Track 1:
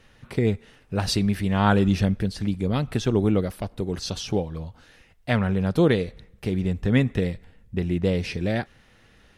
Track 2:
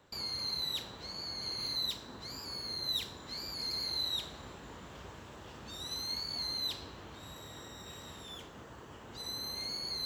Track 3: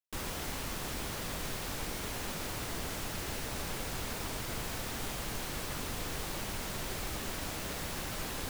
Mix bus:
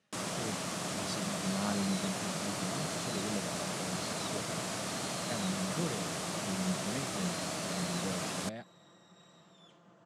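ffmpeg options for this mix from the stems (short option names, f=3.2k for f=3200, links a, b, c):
-filter_complex "[0:a]highshelf=f=4.9k:g=12,flanger=delay=4.7:depth=2.5:regen=78:speed=0.58:shape=triangular,volume=-17.5dB[a];[1:a]aecho=1:1:5.8:0.51,adelay=1300,volume=-15.5dB[b];[2:a]highshelf=f=6.6k:g=10.5,volume=-1dB[c];[a][b][c]amix=inputs=3:normalize=0,highpass=f=110:w=0.5412,highpass=f=110:w=1.3066,equalizer=f=180:t=q:w=4:g=10,equalizer=f=300:t=q:w=4:g=3,equalizer=f=640:t=q:w=4:g=9,equalizer=f=1.2k:t=q:w=4:g=5,lowpass=f=9k:w=0.5412,lowpass=f=9k:w=1.3066"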